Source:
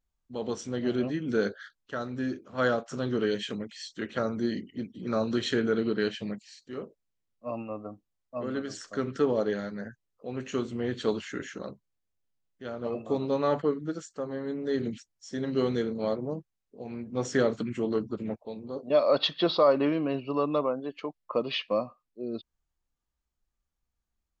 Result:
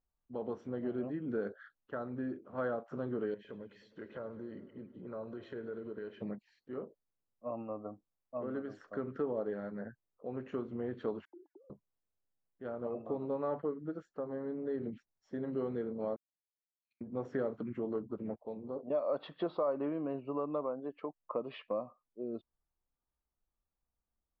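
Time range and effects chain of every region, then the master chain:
0:03.34–0:06.22: downward compressor 3 to 1, threshold −40 dBFS + comb filter 2 ms, depth 31% + feedback echo with a swinging delay time 103 ms, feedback 73%, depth 88 cents, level −18 dB
0:11.25–0:11.70: three sine waves on the formant tracks + downward compressor 5 to 1, threshold −42 dBFS + formant resonators in series u
0:16.16–0:17.01: inverse Chebyshev high-pass filter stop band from 1,100 Hz, stop band 60 dB + output level in coarse steps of 17 dB + multiband upward and downward expander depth 40%
whole clip: low-pass filter 1,100 Hz 12 dB per octave; low-shelf EQ 290 Hz −6.5 dB; downward compressor 2 to 1, threshold −37 dBFS

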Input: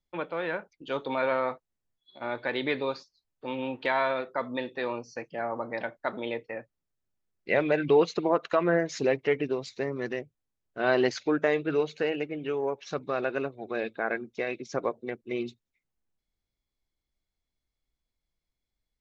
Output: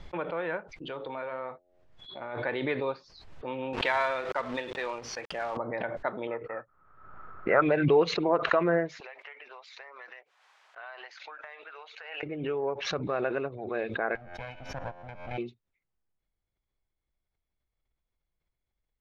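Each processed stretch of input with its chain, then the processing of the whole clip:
0:00.74–0:02.40: downward compressor 3 to 1, threshold −33 dBFS + hum removal 89.71 Hz, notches 9
0:03.73–0:05.57: spectral tilt +3 dB per octave + log-companded quantiser 4 bits
0:06.27–0:07.62: low-pass with resonance 1,300 Hz, resonance Q 14 + low-shelf EQ 420 Hz −5 dB
0:09.00–0:12.23: high-pass filter 810 Hz 24 dB per octave + downward compressor 5 to 1, threshold −40 dBFS
0:14.15–0:15.38: lower of the sound and its delayed copy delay 1.3 ms + tuned comb filter 88 Hz, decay 1.2 s
whole clip: Bessel low-pass filter 2,100 Hz, order 2; parametric band 250 Hz −5 dB 0.77 octaves; background raised ahead of every attack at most 56 dB per second

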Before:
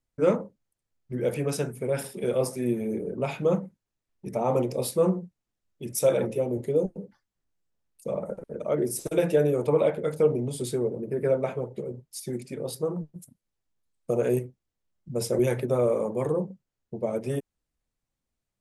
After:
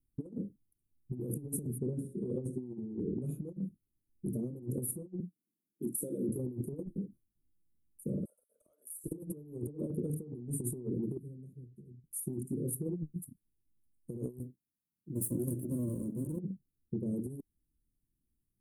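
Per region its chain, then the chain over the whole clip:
0:01.78–0:03.16: high-frequency loss of the air 130 metres + mains-hum notches 60/120/180/240/300/360/420/480/540/600 Hz
0:05.20–0:06.29: high-pass filter 180 Hz 24 dB per octave + downward compressor 2.5 to 1, threshold −29 dBFS
0:08.25–0:09.04: elliptic high-pass filter 720 Hz, stop band 50 dB + hard clipping −24.5 dBFS + downward compressor, threshold −44 dBFS
0:11.17–0:12.04: Butterworth band-reject 1,400 Hz, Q 2 + guitar amp tone stack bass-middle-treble 6-0-2
0:14.39–0:16.39: lower of the sound and its delayed copy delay 1.2 ms + high-pass filter 200 Hz
whole clip: elliptic band-stop filter 330–9,900 Hz, stop band 40 dB; compressor whose output falls as the input rises −36 dBFS, ratio −0.5

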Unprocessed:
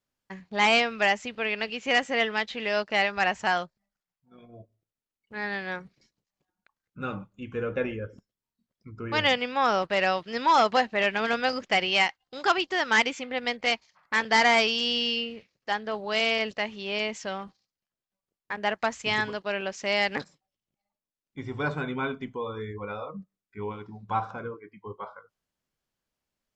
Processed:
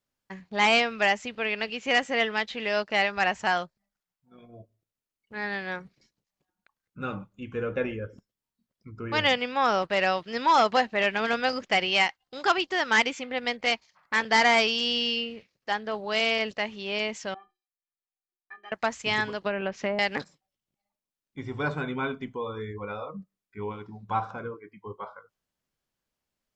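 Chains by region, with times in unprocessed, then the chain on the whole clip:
0:17.34–0:18.72: low-pass filter 1,800 Hz + tilt shelving filter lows −7 dB, about 870 Hz + stiff-string resonator 360 Hz, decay 0.21 s, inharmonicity 0.03
0:19.42–0:19.99: treble cut that deepens with the level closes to 570 Hz, closed at −21.5 dBFS + bass and treble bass +5 dB, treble −6 dB + multiband upward and downward compressor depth 100%
whole clip: no processing

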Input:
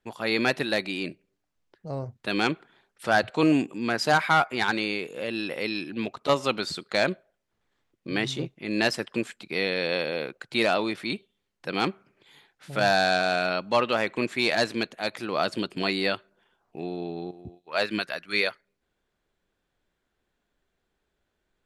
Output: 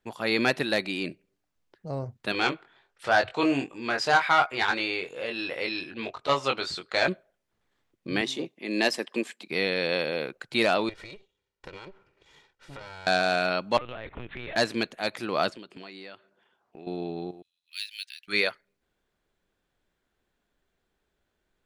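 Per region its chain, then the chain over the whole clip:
0:02.32–0:07.08: Bessel low-pass filter 6,000 Hz + parametric band 210 Hz −11 dB 1.3 octaves + double-tracking delay 22 ms −5 dB
0:08.21–0:09.49: high-pass filter 220 Hz 24 dB per octave + notch filter 1,400 Hz, Q 5.1
0:10.89–0:13.07: lower of the sound and its delayed copy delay 2.1 ms + downward compressor 10 to 1, threshold −38 dBFS + high-frequency loss of the air 63 metres
0:13.77–0:14.56: hard clipping −23 dBFS + linear-prediction vocoder at 8 kHz pitch kept + downward compressor 3 to 1, threshold −36 dBFS
0:15.50–0:16.87: high-pass filter 210 Hz 6 dB per octave + downward compressor 4 to 1, threshold −42 dBFS + high-frequency loss of the air 55 metres
0:17.42–0:18.28: inverse Chebyshev high-pass filter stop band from 870 Hz, stop band 60 dB + linearly interpolated sample-rate reduction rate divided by 3×
whole clip: no processing

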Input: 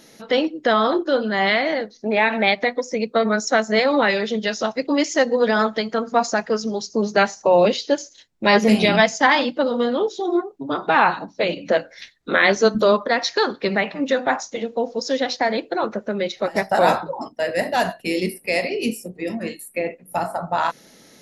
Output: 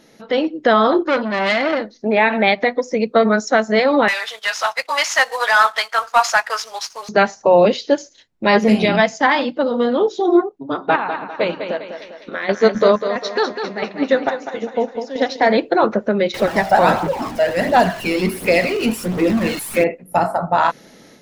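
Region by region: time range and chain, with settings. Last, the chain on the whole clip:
0:01.07–0:01.98: comb filter 3.4 ms, depth 47% + saturating transformer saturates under 2,100 Hz
0:04.08–0:07.09: variable-slope delta modulation 64 kbit/s + high-pass filter 890 Hz 24 dB per octave + leveller curve on the samples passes 1
0:10.49–0:15.47: square-wave tremolo 1.5 Hz, depth 60%, duty 70% + feedback echo with a high-pass in the loop 200 ms, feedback 53%, high-pass 160 Hz, level −6 dB + expander for the loud parts, over −31 dBFS
0:16.34–0:19.84: converter with a step at zero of −26.5 dBFS + phase shifter 1.4 Hz, delay 1.5 ms, feedback 41%
whole clip: automatic gain control gain up to 11 dB; high-shelf EQ 4,000 Hz −9 dB

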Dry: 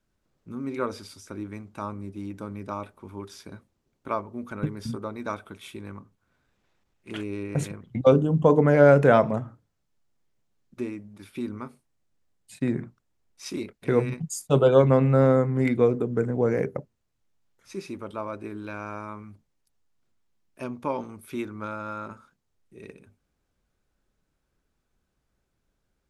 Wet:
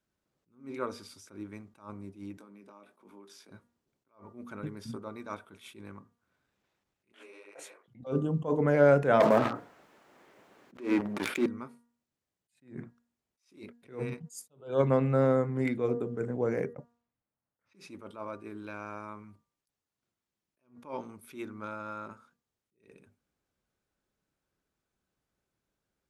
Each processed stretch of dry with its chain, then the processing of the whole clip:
0:02.37–0:03.51: high-pass filter 190 Hz 24 dB per octave + downward compressor, threshold −45 dBFS + double-tracking delay 20 ms −8.5 dB
0:07.12–0:07.88: high-pass filter 500 Hz 24 dB per octave + micro pitch shift up and down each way 47 cents
0:09.20–0:11.46: three-way crossover with the lows and the highs turned down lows −20 dB, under 260 Hz, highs −16 dB, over 2,500 Hz + leveller curve on the samples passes 3 + envelope flattener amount 70%
0:16.73–0:17.97: notch filter 380 Hz, Q 5.9 + low-pass that shuts in the quiet parts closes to 1,400 Hz, open at −35 dBFS
whole clip: high-pass filter 130 Hz 6 dB per octave; hum removal 236.9 Hz, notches 8; level that may rise only so fast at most 170 dB per second; level −5 dB

